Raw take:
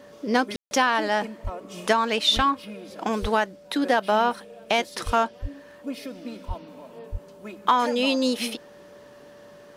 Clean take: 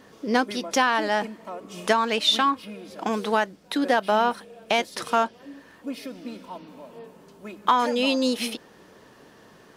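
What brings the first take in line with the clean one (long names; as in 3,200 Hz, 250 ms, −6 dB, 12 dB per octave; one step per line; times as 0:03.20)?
notch filter 580 Hz, Q 30
high-pass at the plosives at 0:01.43/0:02.35/0:03.21/0:05.05/0:05.41/0:06.47/0:07.11
ambience match 0:00.56–0:00.71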